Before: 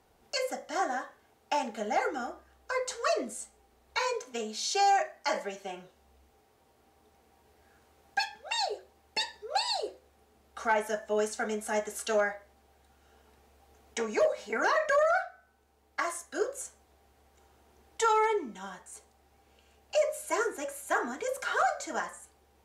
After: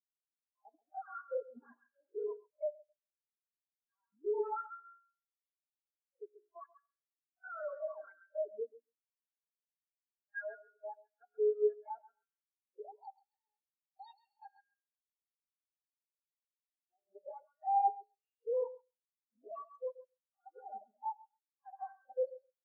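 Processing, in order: whole clip reversed; in parallel at +1.5 dB: compressor 10:1, threshold -36 dBFS, peak gain reduction 15 dB; on the sum: harmonic tremolo 1.4 Hz, depth 100%, crossover 840 Hz; dynamic EQ 930 Hz, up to +5 dB, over -43 dBFS, Q 1.3; resonator 60 Hz, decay 1.6 s, harmonics all, mix 80%; on a send at -18 dB: reverb RT60 0.50 s, pre-delay 4 ms; on the sum: sample leveller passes 2; low shelf 94 Hz -6.5 dB; soft clip -36 dBFS, distortion -11 dB; level quantiser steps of 10 dB; feedback echo 0.134 s, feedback 40%, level -4.5 dB; spectral expander 4:1; gain +10.5 dB

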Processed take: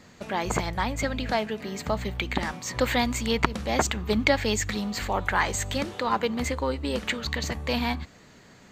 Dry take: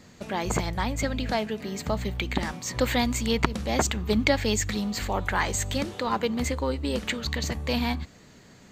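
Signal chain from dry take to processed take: bell 1300 Hz +4.5 dB 2.9 oct; gain -2 dB

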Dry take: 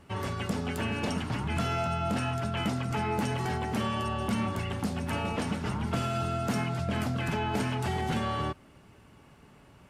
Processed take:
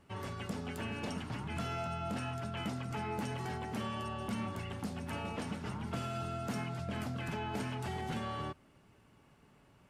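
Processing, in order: bell 70 Hz -5.5 dB 0.29 oct; gain -8 dB

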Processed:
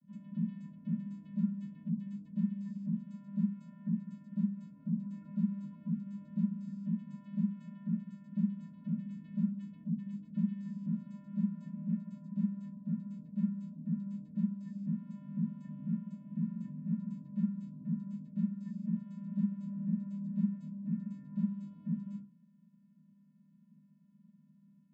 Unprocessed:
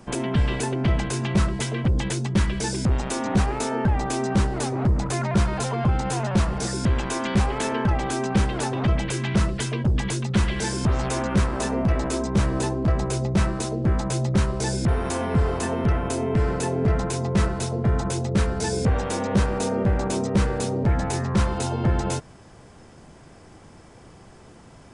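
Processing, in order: EQ curve 220 Hz 0 dB, 320 Hz -27 dB, 3100 Hz -16 dB; vocoder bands 16, square 199 Hz; FDN reverb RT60 0.32 s, low-frequency decay 1.3×, high-frequency decay 0.35×, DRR -3 dB; gain -8.5 dB

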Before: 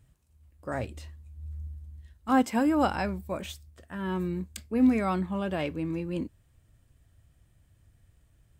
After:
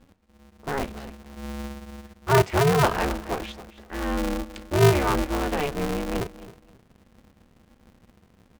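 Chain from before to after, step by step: LPF 3400 Hz 12 dB/oct; feedback echo 0.27 s, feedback 22%, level -16 dB; polarity switched at an audio rate 140 Hz; gain +4.5 dB

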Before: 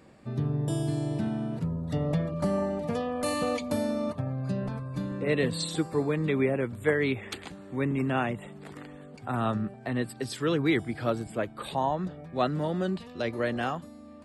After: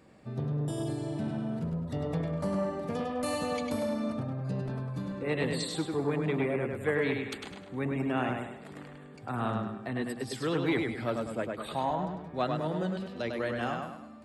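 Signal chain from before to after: on a send: tape echo 0.102 s, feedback 46%, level -3 dB, low-pass 5500 Hz; on the sum: core saturation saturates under 450 Hz; gain -3.5 dB

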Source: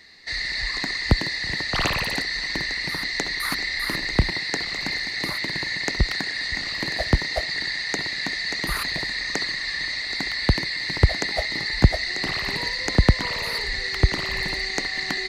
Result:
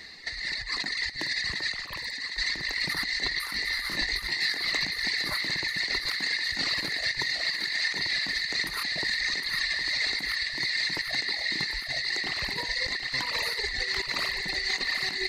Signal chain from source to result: de-hum 131.5 Hz, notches 27; reverb removal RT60 1.3 s; 1.97–2.37 ripple EQ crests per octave 1, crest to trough 13 dB; negative-ratio compressor -33 dBFS, ratio -0.5; 3.52–4.55 doubler 20 ms -5.5 dB; thinning echo 0.76 s, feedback 74%, high-pass 750 Hz, level -6 dB

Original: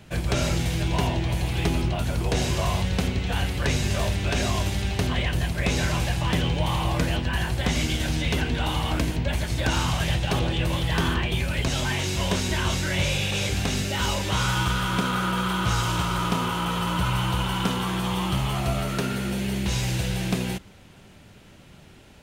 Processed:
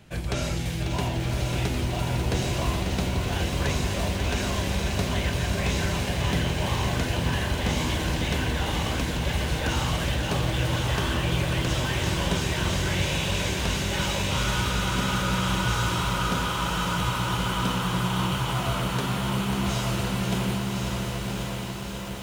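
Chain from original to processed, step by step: diffused feedback echo 1.088 s, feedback 49%, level -3.5 dB; lo-fi delay 0.543 s, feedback 80%, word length 7-bit, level -7.5 dB; gain -4 dB

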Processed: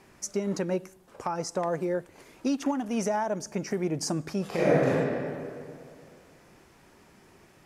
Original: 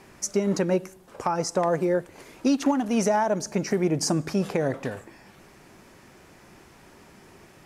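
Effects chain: 2.49–3.79 notch 4100 Hz, Q 9.2; 4.48–4.89 reverb throw, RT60 2.3 s, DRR -10 dB; gain -5.5 dB

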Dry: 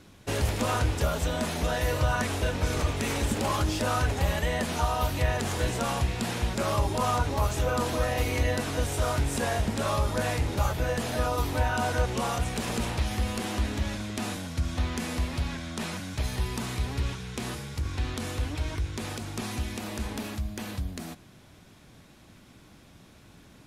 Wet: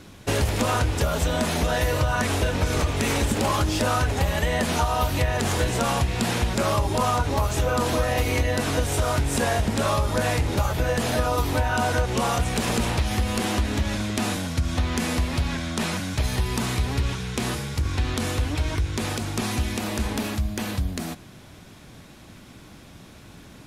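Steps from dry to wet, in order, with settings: compressor, threshold -26 dBFS, peak gain reduction 7 dB; gain +7.5 dB

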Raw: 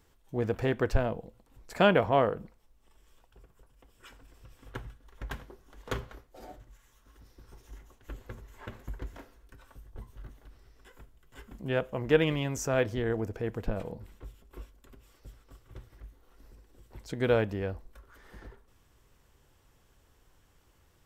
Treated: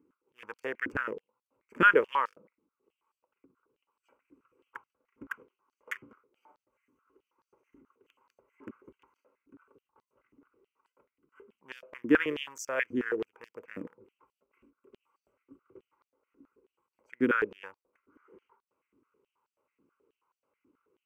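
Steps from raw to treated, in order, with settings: Wiener smoothing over 25 samples; fixed phaser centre 1700 Hz, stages 4; stepped high-pass 9.3 Hz 280–4400 Hz

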